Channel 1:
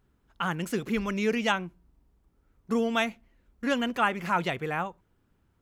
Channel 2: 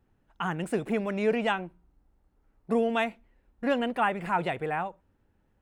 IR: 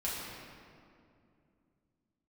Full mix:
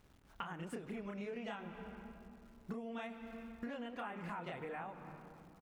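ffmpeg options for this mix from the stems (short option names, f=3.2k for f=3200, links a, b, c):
-filter_complex "[0:a]aemphasis=mode=reproduction:type=50fm,acrusher=bits=10:mix=0:aa=0.000001,volume=-2dB,asplit=2[a][b];[b]volume=-20dB[c];[1:a]acompressor=threshold=-31dB:ratio=2.5,adelay=30,volume=-3.5dB,asplit=2[d][e];[e]apad=whole_len=247402[f];[a][f]sidechaincompress=threshold=-47dB:ratio=8:attack=16:release=124[g];[2:a]atrim=start_sample=2205[h];[c][h]afir=irnorm=-1:irlink=0[i];[g][d][i]amix=inputs=3:normalize=0,acompressor=threshold=-43dB:ratio=4"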